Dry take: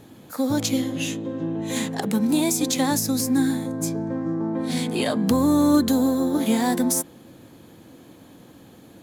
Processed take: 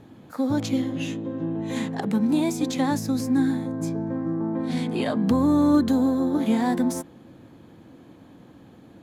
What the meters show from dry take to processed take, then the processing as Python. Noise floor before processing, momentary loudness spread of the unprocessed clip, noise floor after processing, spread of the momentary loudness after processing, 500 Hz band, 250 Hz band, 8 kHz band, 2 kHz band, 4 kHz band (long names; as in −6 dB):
−49 dBFS, 9 LU, −50 dBFS, 10 LU, −2.5 dB, −0.5 dB, −12.5 dB, −3.5 dB, −7.5 dB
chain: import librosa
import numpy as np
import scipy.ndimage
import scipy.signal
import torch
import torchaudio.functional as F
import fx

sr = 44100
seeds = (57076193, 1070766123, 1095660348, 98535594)

y = fx.lowpass(x, sr, hz=1800.0, slope=6)
y = fx.peak_eq(y, sr, hz=490.0, db=-2.5, octaves=0.92)